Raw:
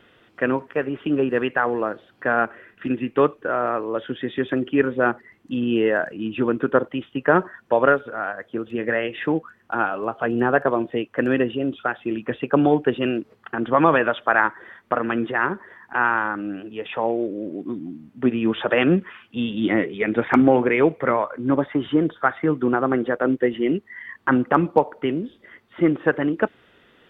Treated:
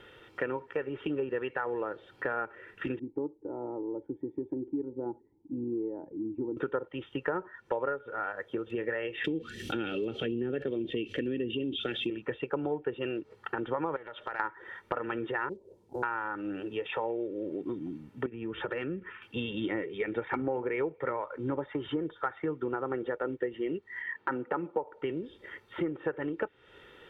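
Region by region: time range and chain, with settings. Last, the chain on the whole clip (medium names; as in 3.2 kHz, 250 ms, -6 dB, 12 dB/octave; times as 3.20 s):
2.99–6.57 s: cascade formant filter u + bass shelf 170 Hz +5.5 dB
9.24–12.10 s: FFT filter 150 Hz 0 dB, 230 Hz +7 dB, 420 Hz -2 dB, 990 Hz -28 dB, 3.3 kHz +11 dB, 5 kHz +8 dB + level flattener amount 50%
13.96–14.40 s: compression 4:1, threshold -33 dBFS + loudspeaker Doppler distortion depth 0.37 ms
15.49–16.03 s: steep low-pass 580 Hz + companded quantiser 8-bit
18.26–19.22 s: low-pass 1.9 kHz + peaking EQ 750 Hz -10.5 dB 1.5 oct + compression 4:1, threshold -26 dBFS
24.01–24.84 s: band-pass 170–2800 Hz + band-stop 1.1 kHz, Q 11
whole clip: low-pass that closes with the level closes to 1.8 kHz, closed at -13 dBFS; comb 2.2 ms, depth 56%; compression 4:1, threshold -32 dBFS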